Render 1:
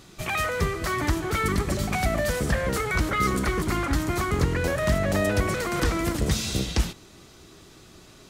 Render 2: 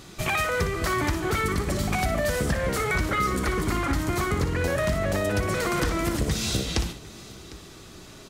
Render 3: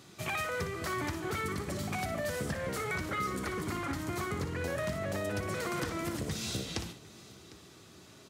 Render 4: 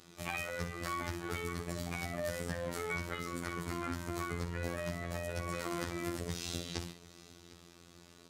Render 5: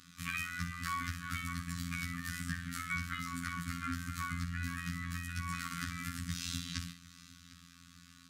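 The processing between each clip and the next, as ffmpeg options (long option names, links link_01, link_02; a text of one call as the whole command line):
ffmpeg -i in.wav -filter_complex "[0:a]acompressor=threshold=-26dB:ratio=6,asplit=2[link_01][link_02];[link_02]aecho=0:1:59|753:0.335|0.1[link_03];[link_01][link_03]amix=inputs=2:normalize=0,volume=4dB" out.wav
ffmpeg -i in.wav -af "highpass=frequency=81:width=0.5412,highpass=frequency=81:width=1.3066,volume=-9dB" out.wav
ffmpeg -i in.wav -af "afftfilt=real='hypot(re,im)*cos(PI*b)':imag='0':win_size=2048:overlap=0.75" out.wav
ffmpeg -i in.wav -af "equalizer=frequency=1600:width=4.6:gain=3.5,afftfilt=real='re*(1-between(b*sr/4096,300,1100))':imag='im*(1-between(b*sr/4096,300,1100))':win_size=4096:overlap=0.75,volume=1dB" out.wav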